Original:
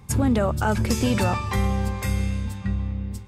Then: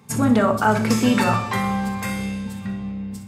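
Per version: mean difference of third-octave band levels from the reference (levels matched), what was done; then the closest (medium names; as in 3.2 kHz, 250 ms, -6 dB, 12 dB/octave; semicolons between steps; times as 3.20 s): 3.0 dB: high-pass 120 Hz 24 dB/octave; dynamic bell 1.3 kHz, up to +7 dB, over -39 dBFS, Q 0.9; on a send: feedback echo behind a high-pass 62 ms, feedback 49%, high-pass 4.9 kHz, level -10 dB; on the sum: simulated room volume 680 m³, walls furnished, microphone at 1.6 m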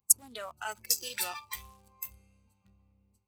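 15.5 dB: local Wiener filter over 25 samples; treble shelf 8 kHz +9.5 dB; spectral noise reduction 16 dB; pre-emphasis filter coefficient 0.97; trim +5.5 dB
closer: first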